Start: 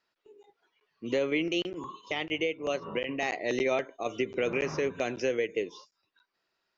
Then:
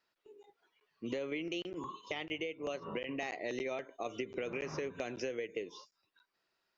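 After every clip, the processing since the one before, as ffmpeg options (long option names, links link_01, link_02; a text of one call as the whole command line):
ffmpeg -i in.wav -af "acompressor=threshold=-33dB:ratio=6,volume=-2dB" out.wav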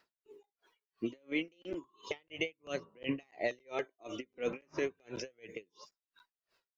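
ffmpeg -i in.wav -af "flanger=delay=0:depth=4.1:regen=39:speed=0.34:shape=triangular,aeval=exprs='val(0)*pow(10,-38*(0.5-0.5*cos(2*PI*2.9*n/s))/20)':channel_layout=same,volume=11.5dB" out.wav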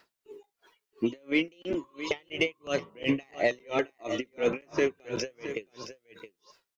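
ffmpeg -i in.wav -filter_complex "[0:a]asplit=2[link_01][link_02];[link_02]asoftclip=type=tanh:threshold=-28.5dB,volume=-5.5dB[link_03];[link_01][link_03]amix=inputs=2:normalize=0,aecho=1:1:669:0.251,volume=5.5dB" out.wav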